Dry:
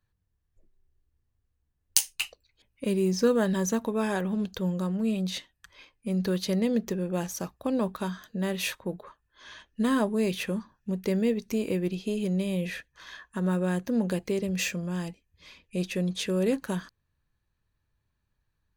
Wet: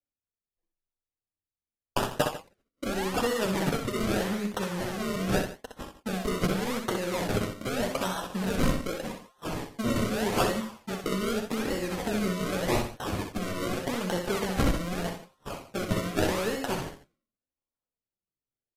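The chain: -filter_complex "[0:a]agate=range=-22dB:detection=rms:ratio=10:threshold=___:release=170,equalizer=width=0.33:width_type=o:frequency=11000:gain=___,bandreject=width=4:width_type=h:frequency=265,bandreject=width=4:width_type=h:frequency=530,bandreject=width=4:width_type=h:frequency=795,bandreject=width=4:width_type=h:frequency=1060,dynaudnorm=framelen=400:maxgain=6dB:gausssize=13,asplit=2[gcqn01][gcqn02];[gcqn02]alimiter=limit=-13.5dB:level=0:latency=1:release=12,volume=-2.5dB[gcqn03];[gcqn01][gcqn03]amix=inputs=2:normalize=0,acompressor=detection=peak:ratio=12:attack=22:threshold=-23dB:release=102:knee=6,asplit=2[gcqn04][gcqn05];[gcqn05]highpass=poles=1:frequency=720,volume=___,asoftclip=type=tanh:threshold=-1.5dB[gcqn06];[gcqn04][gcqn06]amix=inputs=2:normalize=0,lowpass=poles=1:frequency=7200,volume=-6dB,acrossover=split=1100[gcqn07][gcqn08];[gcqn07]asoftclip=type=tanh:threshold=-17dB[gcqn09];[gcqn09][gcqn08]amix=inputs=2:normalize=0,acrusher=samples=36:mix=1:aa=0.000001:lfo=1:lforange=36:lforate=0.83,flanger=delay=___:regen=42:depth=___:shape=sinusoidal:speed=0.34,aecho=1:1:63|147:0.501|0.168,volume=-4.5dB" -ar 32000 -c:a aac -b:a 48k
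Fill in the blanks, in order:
-49dB, -4.5, 17dB, 3.6, 6.2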